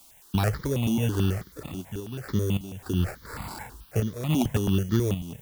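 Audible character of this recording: aliases and images of a low sample rate 3.1 kHz, jitter 0%; random-step tremolo, depth 85%; a quantiser's noise floor 10-bit, dither triangular; notches that jump at a steady rate 9.2 Hz 470–2600 Hz

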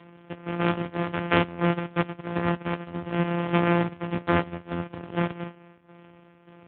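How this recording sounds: a buzz of ramps at a fixed pitch in blocks of 256 samples; tremolo saw down 1.7 Hz, depth 65%; AMR-NB

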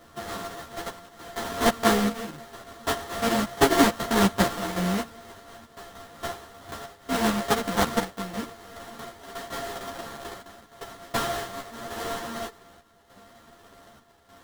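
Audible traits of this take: a buzz of ramps at a fixed pitch in blocks of 64 samples; chopped level 0.84 Hz, depth 60%, duty 75%; aliases and images of a low sample rate 2.5 kHz, jitter 20%; a shimmering, thickened sound

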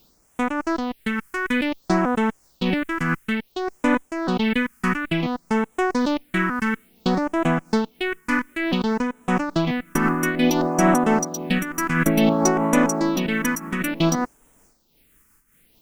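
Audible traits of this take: a quantiser's noise floor 10-bit, dither triangular; phasing stages 4, 0.57 Hz, lowest notch 610–4400 Hz; random flutter of the level

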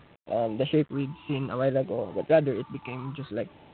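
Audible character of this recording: phasing stages 8, 0.6 Hz, lowest notch 530–1400 Hz; a quantiser's noise floor 10-bit, dither none; G.726

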